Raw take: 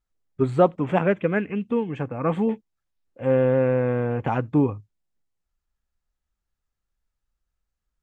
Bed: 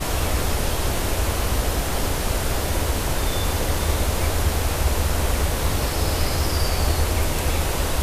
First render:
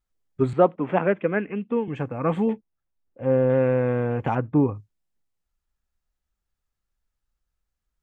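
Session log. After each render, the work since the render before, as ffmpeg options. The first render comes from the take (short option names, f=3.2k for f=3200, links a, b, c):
-filter_complex "[0:a]asettb=1/sr,asplit=3[a][b][c];[a]atrim=end=0.534[d];[b]atrim=start=0.53:end=1.88,asetpts=PTS-STARTPTS,afade=t=in:d=0.004:c=qsin,afade=t=out:st=1.346:d=0.004:c=qsin,acrossover=split=170 3200:gain=0.224 1 0.0891[e][f][g];[e][f][g]amix=inputs=3:normalize=0[h];[c]atrim=start=1.876[i];[d][h]acrossfade=d=0.004:c1=hsin:c2=qsin[j];[j][i]acrossfade=d=0.004:c1=qsin:c2=hsin,asettb=1/sr,asplit=3[k][l][m];[k]atrim=end=2.534[n];[l]atrim=start=2.53:end=3.5,asetpts=PTS-STARTPTS,afade=t=in:d=0.004:c=qsin,afade=t=out:st=0.966:d=0.004:c=qsin,highshelf=f=2.1k:g=-12[o];[m]atrim=start=3.496[p];[n][o]acrossfade=d=0.004:c1=hsin:c2=qsin[q];[q][p]acrossfade=d=0.004:c1=qsin:c2=hsin,asettb=1/sr,asplit=3[r][s][t];[r]atrim=end=4.354[u];[s]atrim=start=4.35:end=4.75,asetpts=PTS-STARTPTS,afade=t=in:d=0.004:c=qsin,afade=t=out:st=0.396:d=0.004:c=qsin,lowpass=1.9k[v];[t]atrim=start=4.746[w];[u][v]acrossfade=d=0.004:c1=hsin:c2=qsin[x];[x][w]acrossfade=d=0.004:c1=qsin:c2=hsin"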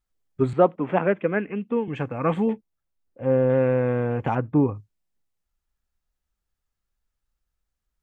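-filter_complex "[0:a]asettb=1/sr,asplit=3[a][b][c];[a]atrim=end=1.934[d];[b]atrim=start=1.93:end=2.34,asetpts=PTS-STARTPTS,afade=t=in:d=0.004:c=qsin,afade=t=out:st=0.406:d=0.004:c=qsin,equalizer=f=3k:w=0.52:g=4.5[e];[c]atrim=start=2.336[f];[d][e]acrossfade=d=0.004:c1=hsin:c2=qsin[g];[g][f]acrossfade=d=0.004:c1=qsin:c2=hsin"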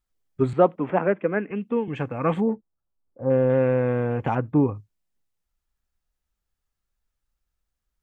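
-filter_complex "[0:a]asettb=1/sr,asplit=3[a][b][c];[a]atrim=end=0.904[d];[b]atrim=start=0.9:end=1.51,asetpts=PTS-STARTPTS,afade=t=in:d=0.004:c=qsin,afade=t=out:st=0.606:d=0.004:c=qsin,highpass=150,lowpass=2.2k[e];[c]atrim=start=1.506[f];[d][e]acrossfade=d=0.004:c1=hsin:c2=qsin[g];[g][f]acrossfade=d=0.004:c1=qsin:c2=hsin,asplit=3[h][i][j];[h]afade=t=out:st=2.4:d=0.02[k];[i]lowpass=f=1.3k:w=0.5412,lowpass=f=1.3k:w=1.3066,afade=t=in:st=2.4:d=0.02,afade=t=out:st=3.29:d=0.02[l];[j]afade=t=in:st=3.29:d=0.02[m];[k][l][m]amix=inputs=3:normalize=0"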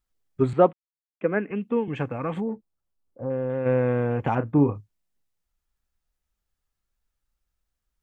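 -filter_complex "[0:a]asplit=3[a][b][c];[a]afade=t=out:st=2.16:d=0.02[d];[b]acompressor=threshold=-27dB:ratio=2.5:attack=3.2:release=140:knee=1:detection=peak,afade=t=in:st=2.16:d=0.02,afade=t=out:st=3.65:d=0.02[e];[c]afade=t=in:st=3.65:d=0.02[f];[d][e][f]amix=inputs=3:normalize=0,asettb=1/sr,asplit=3[g][h][i];[g]atrim=end=4.334[j];[h]atrim=start=4.33:end=4.76,asetpts=PTS-STARTPTS,afade=t=in:d=0.004:c=qsin,afade=t=out:st=0.426:d=0.004:c=qsin,asplit=2[k][l];[l]adelay=35,volume=-11dB[m];[k][m]amix=inputs=2:normalize=0,atrim=end_sample=18963[n];[i]atrim=start=4.756[o];[j][n]acrossfade=d=0.004:c1=hsin:c2=qsin[p];[p][o]acrossfade=d=0.004:c1=qsin:c2=hsin,asplit=3[q][r][s];[q]atrim=end=0.73,asetpts=PTS-STARTPTS,afade=t=out:st=0.726:d=0.004:c=hsin[t];[r]atrim=start=0.73:end=1.21,asetpts=PTS-STARTPTS,volume=0[u];[s]atrim=start=1.21,asetpts=PTS-STARTPTS,afade=t=in:d=0.004:c=hsin[v];[t][u][v]concat=n=3:v=0:a=1"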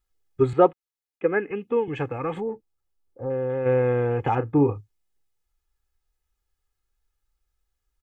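-af "aecho=1:1:2.4:0.55"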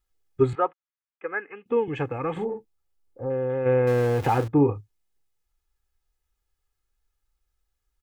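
-filter_complex "[0:a]asettb=1/sr,asplit=3[a][b][c];[a]atrim=end=0.554[d];[b]atrim=start=0.55:end=1.66,asetpts=PTS-STARTPTS,afade=t=in:d=0.004:c=qsin,afade=t=out:st=1.106:d=0.004:c=qsin,bandpass=f=1.4k:t=q:w=1.3[e];[c]atrim=start=1.656[f];[d][e]acrossfade=d=0.004:c1=hsin:c2=qsin[g];[g][f]acrossfade=d=0.004:c1=qsin:c2=hsin,asettb=1/sr,asplit=3[h][i][j];[h]atrim=end=2.324[k];[i]atrim=start=2.32:end=3.22,asetpts=PTS-STARTPTS,afade=t=in:d=0.004:c=qsin,afade=t=out:st=0.896:d=0.004:c=qsin,asplit=2[l][m];[m]adelay=43,volume=-5.5dB[n];[l][n]amix=inputs=2:normalize=0,atrim=end_sample=39690[o];[j]atrim=start=3.216[p];[k][o]acrossfade=d=0.004:c1=hsin:c2=qsin[q];[q][p]acrossfade=d=0.004:c1=qsin:c2=hsin,asettb=1/sr,asplit=3[r][s][t];[r]atrim=end=3.874[u];[s]atrim=start=3.87:end=4.48,asetpts=PTS-STARTPTS,afade=t=in:d=0.004:c=qsin,afade=t=out:st=0.606:d=0.004:c=qsin,aeval=exprs='val(0)+0.5*0.0266*sgn(val(0))':c=same[v];[t]atrim=start=4.476[w];[u][v]acrossfade=d=0.004:c1=hsin:c2=qsin[x];[x][w]acrossfade=d=0.004:c1=qsin:c2=hsin"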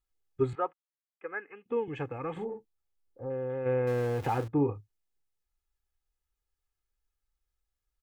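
-af "volume=-7.5dB"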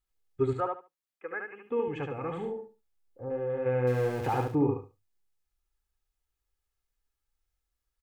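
-af "aecho=1:1:72|144|216:0.631|0.12|0.0228"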